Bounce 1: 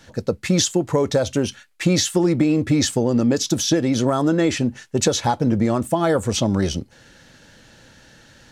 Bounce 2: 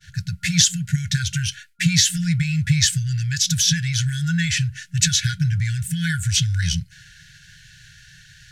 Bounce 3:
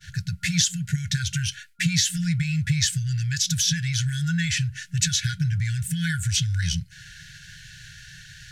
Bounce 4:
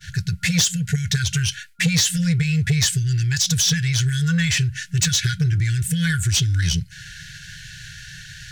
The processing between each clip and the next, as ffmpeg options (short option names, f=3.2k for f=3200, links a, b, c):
-af "agate=range=-33dB:threshold=-46dB:ratio=3:detection=peak,afftfilt=real='re*(1-between(b*sr/4096,180,1400))':imag='im*(1-between(b*sr/4096,180,1400))':win_size=4096:overlap=0.75,volume=5dB"
-af "acompressor=threshold=-36dB:ratio=1.5,volume=3dB"
-af "asoftclip=type=tanh:threshold=-17.5dB,volume=6dB"